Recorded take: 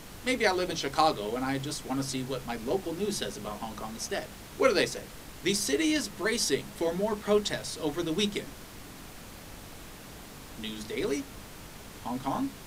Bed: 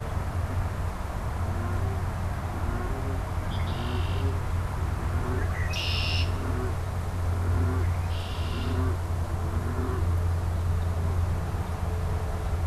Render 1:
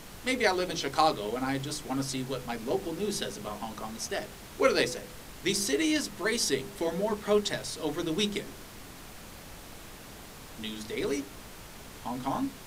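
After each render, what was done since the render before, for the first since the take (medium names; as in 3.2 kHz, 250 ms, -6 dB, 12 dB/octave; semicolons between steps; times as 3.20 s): de-hum 50 Hz, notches 10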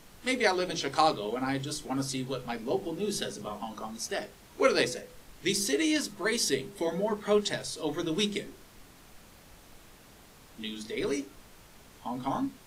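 noise print and reduce 8 dB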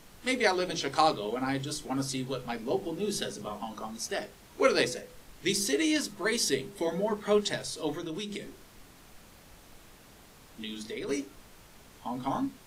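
7.92–11.09 s: compression 5:1, threshold -33 dBFS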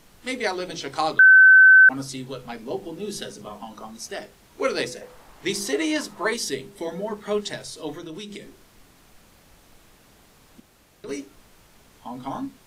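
1.19–1.89 s: bleep 1.53 kHz -7.5 dBFS; 5.01–6.34 s: peaking EQ 900 Hz +11 dB 1.7 oct; 10.60–11.04 s: room tone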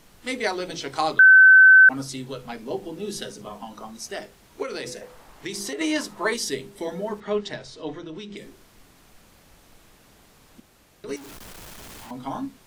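4.62–5.81 s: compression 12:1, threshold -27 dBFS; 7.20–8.37 s: distance through air 120 m; 11.16–12.11 s: one-bit comparator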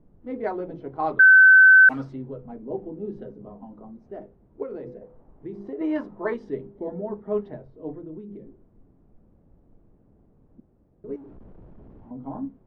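level-controlled noise filter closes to 380 Hz, open at -9 dBFS; treble shelf 4.9 kHz -10 dB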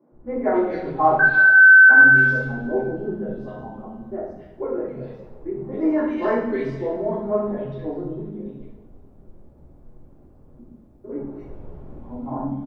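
three bands offset in time mids, lows, highs 120/260 ms, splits 230/2000 Hz; two-slope reverb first 0.67 s, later 2.4 s, from -18 dB, DRR -9.5 dB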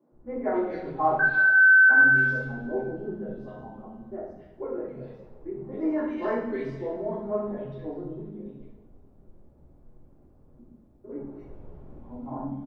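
trim -6.5 dB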